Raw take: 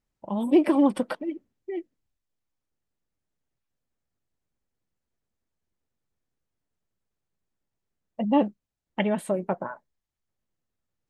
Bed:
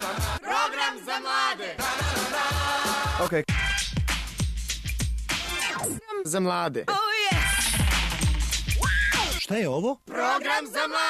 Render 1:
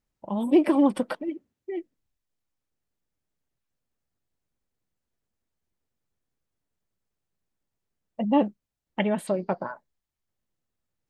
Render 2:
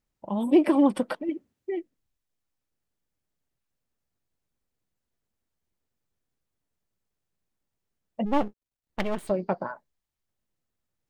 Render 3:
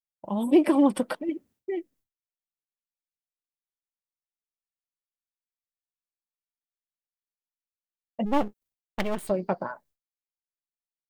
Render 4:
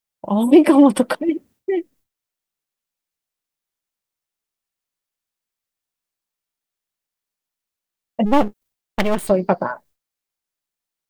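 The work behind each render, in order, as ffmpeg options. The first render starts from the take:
ffmpeg -i in.wav -filter_complex "[0:a]asettb=1/sr,asplit=3[link_01][link_02][link_03];[link_01]atrim=end=1.284[link_04];[link_02]atrim=start=1.28:end=1.72,asetpts=PTS-STARTPTS,afade=type=in:duration=0.004:curve=qsin,afade=type=out:start_time=0.436:duration=0.004:curve=qsin,highpass=51[link_05];[link_03]atrim=start=1.716[link_06];[link_04][link_05]acrossfade=duration=0.004:curve1=hsin:curve2=qsin[link_07];[link_07][link_06]acrossfade=duration=0.004:curve1=qsin:curve2=hsin,asettb=1/sr,asplit=3[link_08][link_09][link_10];[link_08]atrim=end=9.274[link_11];[link_09]atrim=start=9.27:end=9.72,asetpts=PTS-STARTPTS,afade=type=in:duration=0.004:curve=qsin,afade=type=out:start_time=0.446:duration=0.004:curve=qsin,lowpass=frequency=4700:width_type=q:width=15[link_12];[link_10]atrim=start=9.716[link_13];[link_11][link_12]acrossfade=duration=0.004:curve1=hsin:curve2=qsin[link_14];[link_14][link_13]acrossfade=duration=0.004:curve1=qsin:curve2=hsin" out.wav
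ffmpeg -i in.wav -filter_complex "[0:a]asplit=3[link_01][link_02][link_03];[link_01]afade=type=out:start_time=8.25:duration=0.02[link_04];[link_02]aeval=exprs='max(val(0),0)':channel_layout=same,afade=type=in:start_time=8.25:duration=0.02,afade=type=out:start_time=9.29:duration=0.02[link_05];[link_03]afade=type=in:start_time=9.29:duration=0.02[link_06];[link_04][link_05][link_06]amix=inputs=3:normalize=0,asplit=3[link_07][link_08][link_09];[link_07]atrim=end=1.292[link_10];[link_08]atrim=start=1.288:end=1.752,asetpts=PTS-STARTPTS,volume=3dB[link_11];[link_09]atrim=start=1.748[link_12];[link_10][link_11]acrossfade=duration=0.004:curve1=hsin:curve2=hsin[link_13];[link_13][link_12]acrossfade=duration=0.004:curve1=hsin:curve2=hsin" out.wav
ffmpeg -i in.wav -af "agate=range=-33dB:threshold=-55dB:ratio=3:detection=peak,highshelf=frequency=8400:gain=9.5" out.wav
ffmpeg -i in.wav -af "volume=10dB,alimiter=limit=-2dB:level=0:latency=1" out.wav

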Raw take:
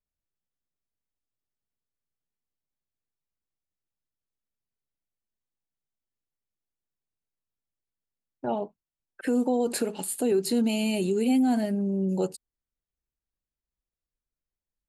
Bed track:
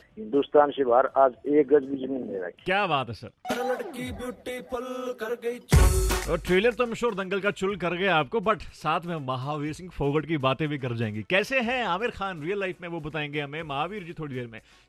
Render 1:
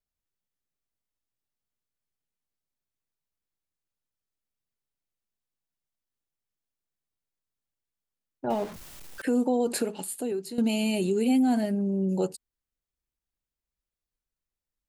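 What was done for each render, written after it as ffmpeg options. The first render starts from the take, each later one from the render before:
ffmpeg -i in.wav -filter_complex "[0:a]asettb=1/sr,asplit=3[link_01][link_02][link_03];[link_01]atrim=end=8.504[link_04];[link_02]atrim=start=8.5:end=9.22,asetpts=PTS-STARTPTS,afade=type=in:duration=0.004:curve=qsin,afade=type=out:start_time=0.716:duration=0.004:curve=qsin,aeval=exprs='val(0)+0.5*0.015*sgn(val(0))':channel_layout=same[link_05];[link_03]atrim=start=9.216[link_06];[link_04][link_05]acrossfade=duration=0.004:curve1=hsin:curve2=qsin[link_07];[link_07][link_06]acrossfade=duration=0.004:curve1=qsin:curve2=hsin,asplit=2[link_08][link_09];[link_08]atrim=end=10.58,asetpts=PTS-STARTPTS,afade=type=out:start_time=9.78:duration=0.8:silence=0.211349[link_10];[link_09]atrim=start=10.58,asetpts=PTS-STARTPTS,afade=type=in:duration=0.004:curve=hsin:silence=0.211349[link_11];[link_10][link_11]concat=n=2:v=0:a=1" out.wav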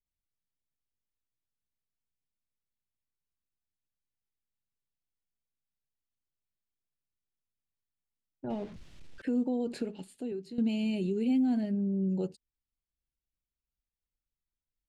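ffmpeg -i in.wav -af "lowpass=2900,equalizer=frequency=1000:width_type=o:width=2.7:gain=-14" out.wav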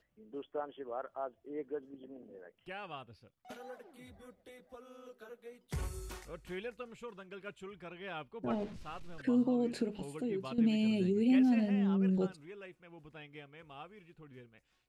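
ffmpeg -i in.wav -i bed.wav -filter_complex "[1:a]volume=-20.5dB[link_01];[0:a][link_01]amix=inputs=2:normalize=0" out.wav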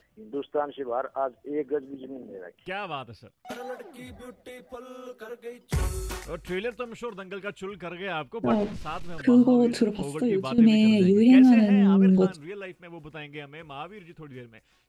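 ffmpeg -i in.wav -af "volume=11.5dB" out.wav

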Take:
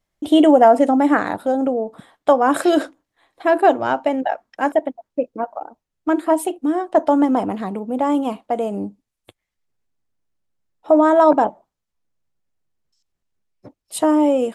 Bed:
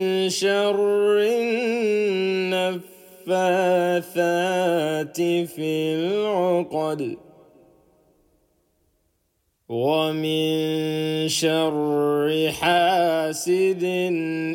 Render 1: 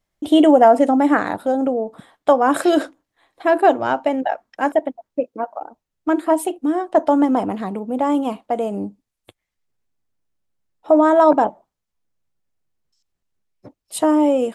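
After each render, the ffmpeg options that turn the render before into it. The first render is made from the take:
ffmpeg -i in.wav -filter_complex "[0:a]asettb=1/sr,asplit=3[link_01][link_02][link_03];[link_01]atrim=end=5.204[link_04];[link_02]atrim=start=5.2:end=5.61,asetpts=PTS-STARTPTS,afade=type=in:duration=0.004:curve=qsin,afade=type=out:start_time=0.406:duration=0.004:curve=qsin,highpass=frequency=200:poles=1[link_05];[link_03]atrim=start=5.606[link_06];[link_04][link_05]acrossfade=duration=0.004:curve1=hsin:curve2=qsin[link_07];[link_07][link_06]acrossfade=duration=0.004:curve1=qsin:curve2=hsin" out.wav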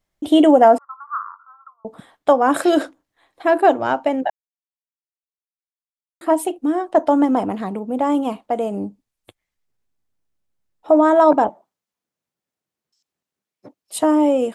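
ffmpeg -i in.wav -filter_complex "[0:a]asettb=1/sr,asplit=3[link_01][link_02][link_03];[link_01]atrim=end=0.784[link_04];[link_02]atrim=start=0.78:end=1.85,asetpts=PTS-STARTPTS,afade=type=in:duration=0.004:curve=qsin,afade=type=out:start_time=1.066:duration=0.004:curve=qsin,asuperpass=centerf=1200:order=8:qfactor=3.3[link_05];[link_03]atrim=start=1.846[link_06];[link_04][link_05]acrossfade=duration=0.004:curve1=hsin:curve2=qsin[link_07];[link_07][link_06]acrossfade=duration=0.004:curve1=qsin:curve2=hsin,asettb=1/sr,asplit=3[link_08][link_09][link_10];[link_08]atrim=end=11.484[link_11];[link_09]atrim=start=11.48:end=14.03,asetpts=PTS-STARTPTS,afade=type=in:duration=0.004:curve=qsin,afade=type=out:start_time=2.546:duration=0.004:curve=qsin,highpass=180[link_12];[link_10]atrim=start=14.026[link_13];[link_11][link_12]acrossfade=duration=0.004:curve1=hsin:curve2=qsin[link_14];[link_14][link_13]acrossfade=duration=0.004:curve1=qsin:curve2=hsin,asplit=3[link_15][link_16][link_17];[link_15]atrim=end=4.3,asetpts=PTS-STARTPTS,afade=type=out:start_time=4.296:duration=0.004:curve=hsin[link_18];[link_16]atrim=start=4.3:end=6.21,asetpts=PTS-STARTPTS,volume=0[link_19];[link_17]atrim=start=6.21,asetpts=PTS-STARTPTS,afade=type=in:duration=0.004:curve=hsin[link_20];[link_18][link_19][link_20]concat=n=3:v=0:a=1" out.wav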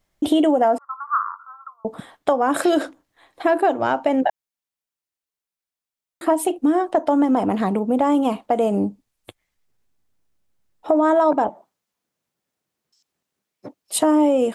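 ffmpeg -i in.wav -filter_complex "[0:a]acompressor=threshold=-19dB:ratio=6,asplit=2[link_01][link_02];[link_02]alimiter=limit=-16dB:level=0:latency=1,volume=-1dB[link_03];[link_01][link_03]amix=inputs=2:normalize=0" out.wav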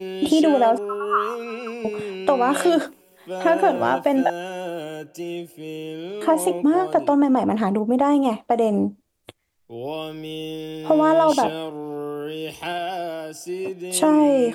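ffmpeg -i in.wav -i bed.wav -filter_complex "[1:a]volume=-9dB[link_01];[0:a][link_01]amix=inputs=2:normalize=0" out.wav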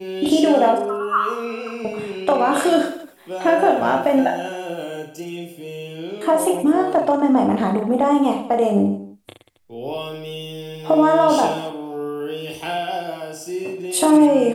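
ffmpeg -i in.wav -af "aecho=1:1:30|69|119.7|185.6|271.3:0.631|0.398|0.251|0.158|0.1" out.wav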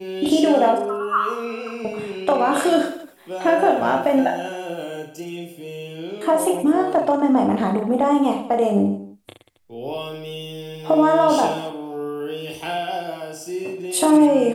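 ffmpeg -i in.wav -af "volume=-1dB" out.wav

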